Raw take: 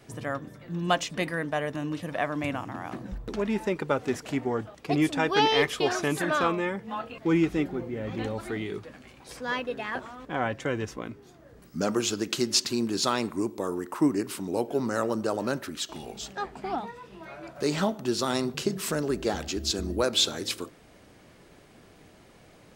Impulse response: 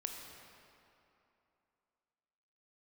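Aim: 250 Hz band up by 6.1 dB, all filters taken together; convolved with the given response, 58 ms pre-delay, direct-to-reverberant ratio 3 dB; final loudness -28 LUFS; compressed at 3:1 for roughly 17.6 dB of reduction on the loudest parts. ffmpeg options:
-filter_complex "[0:a]equalizer=f=250:t=o:g=8,acompressor=threshold=0.0126:ratio=3,asplit=2[s0][s1];[1:a]atrim=start_sample=2205,adelay=58[s2];[s1][s2]afir=irnorm=-1:irlink=0,volume=0.75[s3];[s0][s3]amix=inputs=2:normalize=0,volume=2.66"

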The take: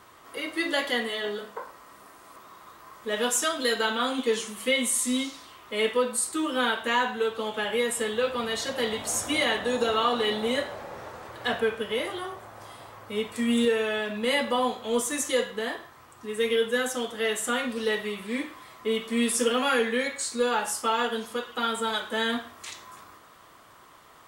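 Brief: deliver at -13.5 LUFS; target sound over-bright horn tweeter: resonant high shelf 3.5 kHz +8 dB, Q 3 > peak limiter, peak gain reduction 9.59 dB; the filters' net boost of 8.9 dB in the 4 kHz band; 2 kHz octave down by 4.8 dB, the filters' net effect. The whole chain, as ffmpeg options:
-af "equalizer=f=2000:t=o:g=-3.5,highshelf=f=3500:t=q:w=3:g=8,equalizer=f=4000:t=o:g=5,volume=3.55,alimiter=limit=0.794:level=0:latency=1"

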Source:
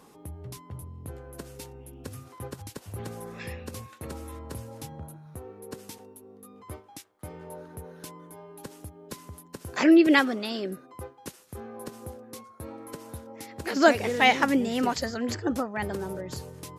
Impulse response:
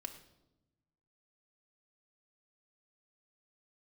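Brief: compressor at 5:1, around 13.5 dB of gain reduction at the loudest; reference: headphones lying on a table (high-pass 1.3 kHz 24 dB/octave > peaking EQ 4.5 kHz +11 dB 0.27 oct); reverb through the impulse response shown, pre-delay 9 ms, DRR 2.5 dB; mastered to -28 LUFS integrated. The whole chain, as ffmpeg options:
-filter_complex "[0:a]acompressor=threshold=0.0355:ratio=5,asplit=2[s0][s1];[1:a]atrim=start_sample=2205,adelay=9[s2];[s1][s2]afir=irnorm=-1:irlink=0,volume=1.06[s3];[s0][s3]amix=inputs=2:normalize=0,highpass=f=1300:w=0.5412,highpass=f=1300:w=1.3066,equalizer=f=4500:t=o:w=0.27:g=11,volume=3.55"

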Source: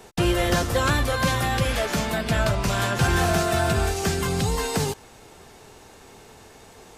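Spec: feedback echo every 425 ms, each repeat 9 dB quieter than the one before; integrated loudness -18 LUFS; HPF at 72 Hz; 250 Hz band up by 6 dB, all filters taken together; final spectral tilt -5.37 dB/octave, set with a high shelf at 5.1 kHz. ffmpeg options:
-af "highpass=72,equalizer=f=250:t=o:g=9,highshelf=f=5100:g=-7,aecho=1:1:425|850|1275|1700:0.355|0.124|0.0435|0.0152,volume=1.5"

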